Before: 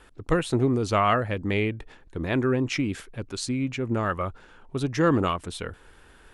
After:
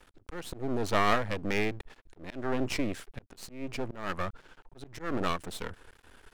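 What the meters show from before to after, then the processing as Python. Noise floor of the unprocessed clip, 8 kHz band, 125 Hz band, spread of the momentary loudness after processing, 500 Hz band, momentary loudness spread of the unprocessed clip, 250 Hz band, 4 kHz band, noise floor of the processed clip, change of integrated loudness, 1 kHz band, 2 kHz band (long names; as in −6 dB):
−54 dBFS, −6.5 dB, −12.0 dB, 19 LU, −7.5 dB, 14 LU, −9.5 dB, −4.0 dB, −64 dBFS, −7.0 dB, −5.5 dB, −4.0 dB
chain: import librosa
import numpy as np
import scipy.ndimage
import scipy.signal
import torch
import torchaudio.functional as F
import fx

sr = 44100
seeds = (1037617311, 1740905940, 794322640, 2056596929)

y = fx.auto_swell(x, sr, attack_ms=272.0)
y = np.maximum(y, 0.0)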